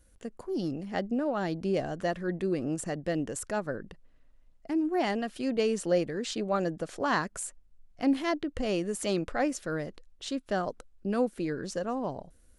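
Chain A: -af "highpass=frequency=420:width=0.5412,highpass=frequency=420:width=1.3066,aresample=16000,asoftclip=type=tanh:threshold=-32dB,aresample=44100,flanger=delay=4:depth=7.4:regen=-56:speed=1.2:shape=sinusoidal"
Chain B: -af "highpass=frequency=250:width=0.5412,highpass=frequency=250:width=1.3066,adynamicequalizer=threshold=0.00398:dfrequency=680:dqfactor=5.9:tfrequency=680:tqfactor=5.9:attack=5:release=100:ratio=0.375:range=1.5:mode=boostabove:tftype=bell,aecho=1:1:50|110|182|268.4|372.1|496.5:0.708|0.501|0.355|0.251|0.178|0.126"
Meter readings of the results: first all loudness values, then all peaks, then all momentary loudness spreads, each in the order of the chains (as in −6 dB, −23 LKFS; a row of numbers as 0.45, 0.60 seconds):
−43.5, −29.0 LKFS; −32.0, −11.5 dBFS; 7, 10 LU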